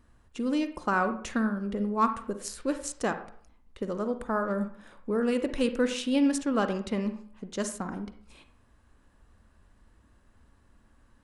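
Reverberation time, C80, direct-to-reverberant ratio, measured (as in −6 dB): 0.55 s, 14.0 dB, 8.5 dB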